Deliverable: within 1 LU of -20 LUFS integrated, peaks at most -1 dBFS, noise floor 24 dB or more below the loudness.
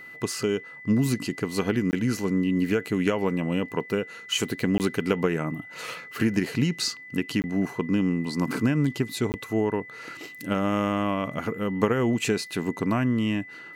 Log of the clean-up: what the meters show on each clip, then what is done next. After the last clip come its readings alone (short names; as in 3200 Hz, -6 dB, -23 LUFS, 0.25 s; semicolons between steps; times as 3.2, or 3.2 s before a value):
dropouts 4; longest dropout 19 ms; steady tone 2000 Hz; tone level -41 dBFS; loudness -26.5 LUFS; peak -8.0 dBFS; loudness target -20.0 LUFS
-> interpolate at 1.91/4.78/7.42/9.32, 19 ms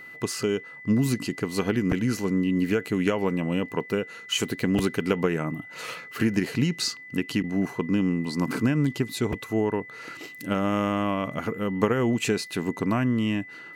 dropouts 0; steady tone 2000 Hz; tone level -41 dBFS
-> notch 2000 Hz, Q 30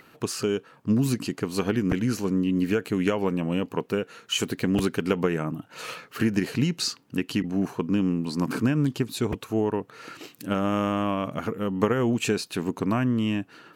steady tone none; loudness -26.5 LUFS; peak -8.0 dBFS; loudness target -20.0 LUFS
-> gain +6.5 dB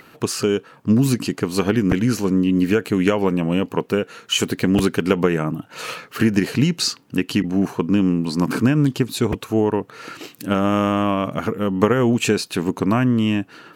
loudness -20.0 LUFS; peak -1.5 dBFS; noise floor -49 dBFS